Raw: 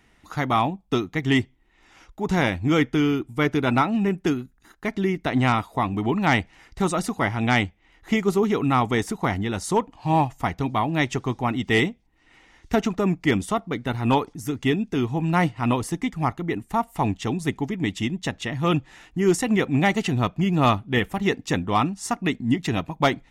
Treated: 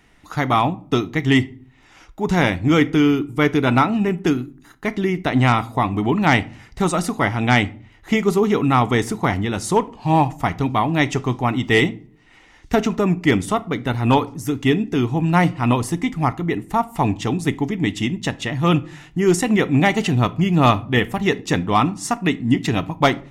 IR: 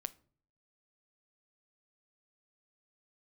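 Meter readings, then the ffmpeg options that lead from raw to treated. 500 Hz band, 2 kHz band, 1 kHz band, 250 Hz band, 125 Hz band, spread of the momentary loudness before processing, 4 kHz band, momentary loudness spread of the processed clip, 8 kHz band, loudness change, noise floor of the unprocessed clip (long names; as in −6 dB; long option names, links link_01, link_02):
+4.0 dB, +4.0 dB, +4.0 dB, +4.5 dB, +5.0 dB, 6 LU, +4.0 dB, 6 LU, +4.0 dB, +4.5 dB, −60 dBFS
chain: -filter_complex "[1:a]atrim=start_sample=2205[link_01];[0:a][link_01]afir=irnorm=-1:irlink=0,volume=6.5dB"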